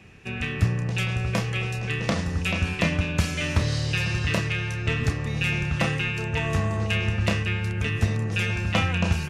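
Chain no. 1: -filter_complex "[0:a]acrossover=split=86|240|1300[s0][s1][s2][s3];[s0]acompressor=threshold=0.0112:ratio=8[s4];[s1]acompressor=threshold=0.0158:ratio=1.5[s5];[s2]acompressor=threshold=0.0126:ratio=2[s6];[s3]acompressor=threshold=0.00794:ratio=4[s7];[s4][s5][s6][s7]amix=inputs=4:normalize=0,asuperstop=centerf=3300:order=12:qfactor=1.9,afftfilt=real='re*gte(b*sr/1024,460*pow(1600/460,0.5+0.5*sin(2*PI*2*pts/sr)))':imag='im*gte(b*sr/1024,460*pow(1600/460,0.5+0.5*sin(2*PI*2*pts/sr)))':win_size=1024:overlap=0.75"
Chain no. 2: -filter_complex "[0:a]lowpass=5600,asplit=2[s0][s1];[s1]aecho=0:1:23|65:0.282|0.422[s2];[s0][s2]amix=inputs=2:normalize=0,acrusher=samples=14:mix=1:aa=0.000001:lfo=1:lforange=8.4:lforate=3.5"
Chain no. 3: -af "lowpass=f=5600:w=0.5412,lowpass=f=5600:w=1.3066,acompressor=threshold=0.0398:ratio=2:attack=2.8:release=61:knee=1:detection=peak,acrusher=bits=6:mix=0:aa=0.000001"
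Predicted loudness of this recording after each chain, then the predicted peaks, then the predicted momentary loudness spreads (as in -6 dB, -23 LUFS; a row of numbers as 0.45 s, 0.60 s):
-40.5 LUFS, -25.5 LUFS, -29.0 LUFS; -19.0 dBFS, -9.5 dBFS, -12.5 dBFS; 3 LU, 4 LU, 1 LU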